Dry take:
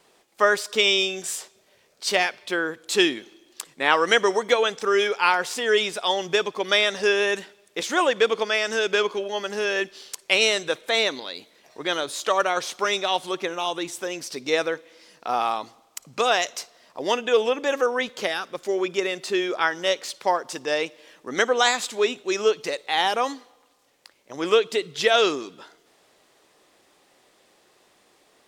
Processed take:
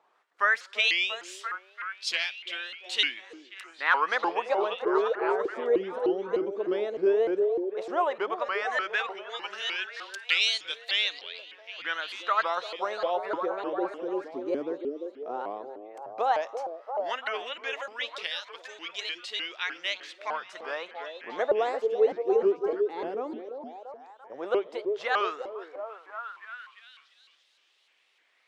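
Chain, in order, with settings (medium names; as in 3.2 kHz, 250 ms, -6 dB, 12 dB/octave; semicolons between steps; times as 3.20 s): 19.85–20.54 s: octave divider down 1 oct, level -3 dB; LFO band-pass sine 0.12 Hz 320–3500 Hz; on a send: repeats whose band climbs or falls 343 ms, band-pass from 420 Hz, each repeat 0.7 oct, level -3 dB; on the sum: vibrato with a chosen wave saw up 3.3 Hz, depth 250 cents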